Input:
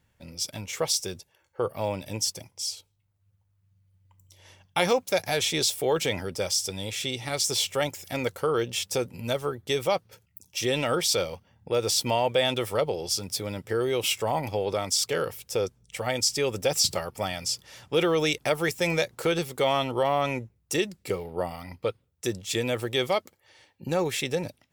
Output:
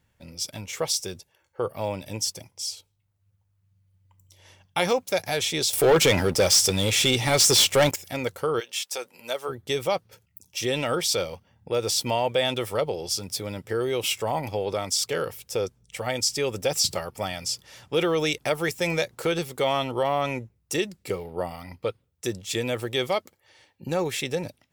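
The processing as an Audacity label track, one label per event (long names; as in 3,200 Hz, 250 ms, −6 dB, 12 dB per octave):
5.730000	7.960000	leveller curve on the samples passes 3
8.590000	9.480000	high-pass filter 1,100 Hz → 410 Hz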